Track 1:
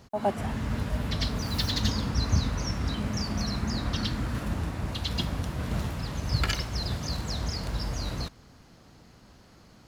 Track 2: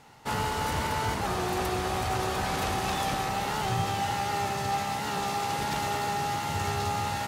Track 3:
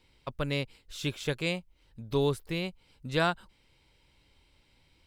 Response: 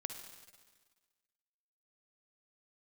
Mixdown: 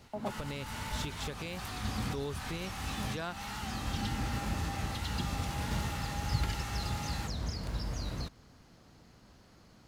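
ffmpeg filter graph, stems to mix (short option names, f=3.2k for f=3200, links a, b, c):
-filter_complex "[0:a]acrossover=split=440[a][b];[b]acompressor=threshold=-38dB:ratio=3[c];[a][c]amix=inputs=2:normalize=0,volume=-4.5dB[d];[1:a]highpass=1.1k,flanger=delay=19:depth=5.7:speed=1.7,asoftclip=type=tanh:threshold=-33dB,volume=-2.5dB[e];[2:a]volume=-1.5dB,asplit=2[f][g];[g]apad=whole_len=435309[h];[d][h]sidechaincompress=threshold=-38dB:ratio=8:attack=16:release=627[i];[e][f]amix=inputs=2:normalize=0,alimiter=level_in=4dB:limit=-24dB:level=0:latency=1:release=144,volume=-4dB,volume=0dB[j];[i][j]amix=inputs=2:normalize=0"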